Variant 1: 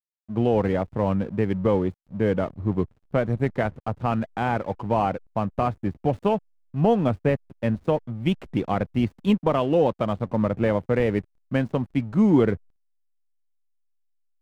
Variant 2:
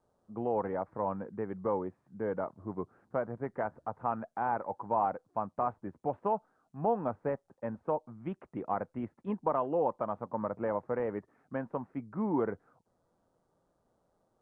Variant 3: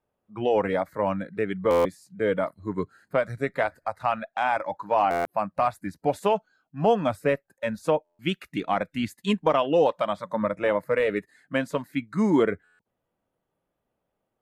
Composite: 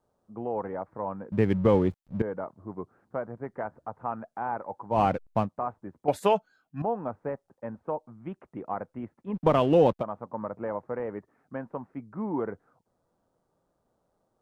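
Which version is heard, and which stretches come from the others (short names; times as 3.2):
2
1.32–2.22 from 1
4.95–5.45 from 1, crossfade 0.10 s
6.08–6.82 from 3
9.36–10.01 from 1, crossfade 0.06 s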